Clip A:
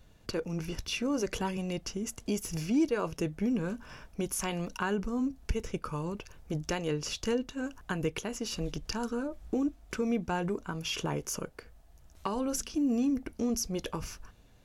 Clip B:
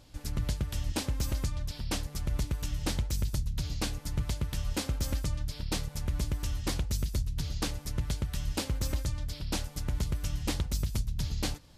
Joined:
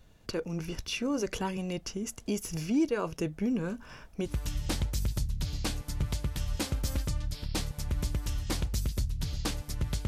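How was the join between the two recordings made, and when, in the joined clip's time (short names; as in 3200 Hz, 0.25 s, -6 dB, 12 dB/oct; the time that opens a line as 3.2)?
clip A
4.29 switch to clip B from 2.46 s, crossfade 0.10 s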